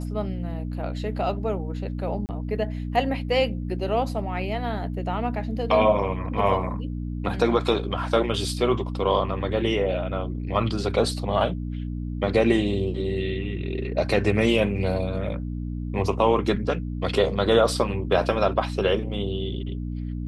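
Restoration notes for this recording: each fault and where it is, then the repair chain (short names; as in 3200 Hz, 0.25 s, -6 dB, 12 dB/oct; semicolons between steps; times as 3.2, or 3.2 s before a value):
hum 60 Hz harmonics 5 -30 dBFS
2.26–2.29 gap 29 ms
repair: de-hum 60 Hz, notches 5; interpolate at 2.26, 29 ms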